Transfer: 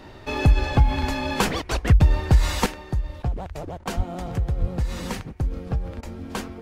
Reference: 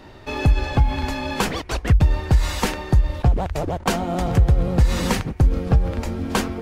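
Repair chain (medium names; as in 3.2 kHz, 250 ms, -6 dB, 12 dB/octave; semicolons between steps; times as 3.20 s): de-plosive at 3.96/4.60 s; interpolate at 6.01 s, 16 ms; gain correction +9 dB, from 2.66 s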